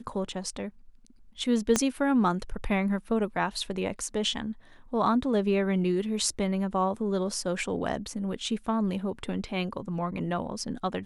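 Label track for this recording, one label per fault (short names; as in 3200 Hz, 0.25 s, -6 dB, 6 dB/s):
1.760000	1.760000	pop -9 dBFS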